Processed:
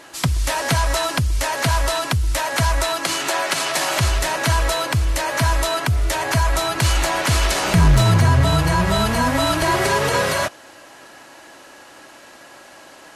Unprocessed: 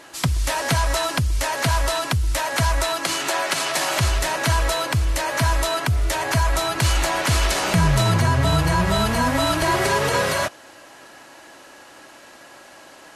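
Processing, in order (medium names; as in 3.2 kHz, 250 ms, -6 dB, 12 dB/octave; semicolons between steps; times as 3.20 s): 7.65–8.44 s: bass shelf 76 Hz +10.5 dB; hard clipper -9.5 dBFS, distortion -24 dB; trim +1.5 dB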